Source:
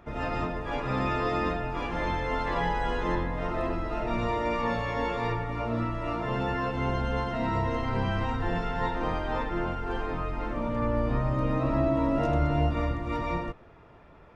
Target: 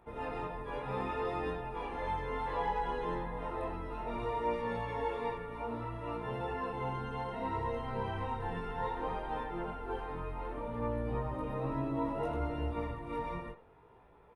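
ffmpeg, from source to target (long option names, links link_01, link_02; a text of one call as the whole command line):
ffmpeg -i in.wav -filter_complex "[0:a]superequalizer=7b=2.24:9b=2.24:14b=0.501:15b=0.562:16b=3.55,flanger=delay=16.5:depth=5.7:speed=0.63,asplit=2[link_01][link_02];[link_02]adelay=80,highpass=300,lowpass=3400,asoftclip=type=hard:threshold=-23dB,volume=-14dB[link_03];[link_01][link_03]amix=inputs=2:normalize=0,volume=-7.5dB" out.wav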